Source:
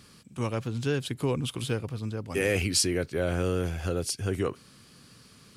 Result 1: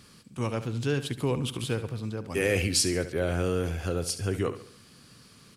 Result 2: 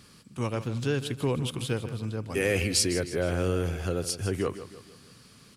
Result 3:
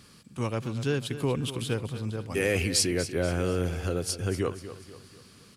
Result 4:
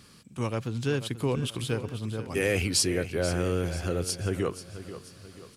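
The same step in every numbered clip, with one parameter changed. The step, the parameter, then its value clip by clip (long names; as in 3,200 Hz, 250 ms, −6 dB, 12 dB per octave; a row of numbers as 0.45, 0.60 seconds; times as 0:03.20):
repeating echo, delay time: 70, 156, 242, 486 milliseconds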